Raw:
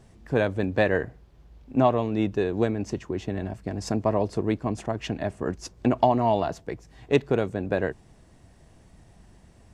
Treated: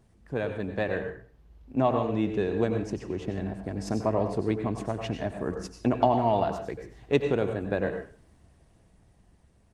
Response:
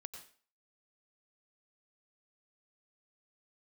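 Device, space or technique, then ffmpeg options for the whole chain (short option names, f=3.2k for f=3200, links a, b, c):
speakerphone in a meeting room: -filter_complex "[1:a]atrim=start_sample=2205[a];[0:a][a]afir=irnorm=-1:irlink=0,asplit=2[b][c];[c]adelay=100,highpass=300,lowpass=3.4k,asoftclip=type=hard:threshold=-20.5dB,volume=-26dB[d];[b][d]amix=inputs=2:normalize=0,dynaudnorm=f=240:g=13:m=5dB,volume=-2dB" -ar 48000 -c:a libopus -b:a 32k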